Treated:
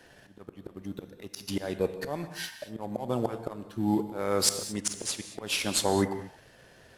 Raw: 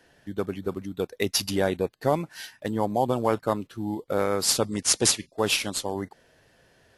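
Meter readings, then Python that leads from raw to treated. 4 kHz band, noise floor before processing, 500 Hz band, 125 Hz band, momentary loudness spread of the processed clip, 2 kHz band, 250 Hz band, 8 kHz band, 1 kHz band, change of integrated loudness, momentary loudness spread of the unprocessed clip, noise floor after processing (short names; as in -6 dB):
-5.0 dB, -62 dBFS, -5.5 dB, -4.0 dB, 17 LU, -5.0 dB, -2.5 dB, -5.5 dB, -6.5 dB, -4.5 dB, 10 LU, -57 dBFS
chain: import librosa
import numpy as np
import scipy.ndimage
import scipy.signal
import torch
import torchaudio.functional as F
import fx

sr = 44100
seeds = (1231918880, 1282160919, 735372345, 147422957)

y = fx.auto_swell(x, sr, attack_ms=752.0)
y = fx.leveller(y, sr, passes=1)
y = fx.rev_gated(y, sr, seeds[0], gate_ms=250, shape='flat', drr_db=9.0)
y = y * librosa.db_to_amplitude(5.0)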